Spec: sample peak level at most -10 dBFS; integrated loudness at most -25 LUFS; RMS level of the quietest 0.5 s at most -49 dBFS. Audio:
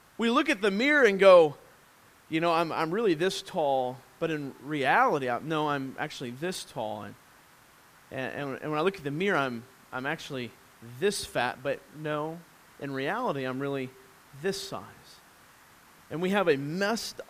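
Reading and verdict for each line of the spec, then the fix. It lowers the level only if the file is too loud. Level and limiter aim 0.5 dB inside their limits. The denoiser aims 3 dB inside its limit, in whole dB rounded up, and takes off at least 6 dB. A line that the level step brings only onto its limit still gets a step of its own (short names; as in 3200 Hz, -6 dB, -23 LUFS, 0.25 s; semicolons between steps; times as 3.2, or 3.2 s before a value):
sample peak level -6.0 dBFS: fail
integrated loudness -28.0 LUFS: OK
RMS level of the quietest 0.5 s -58 dBFS: OK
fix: limiter -10.5 dBFS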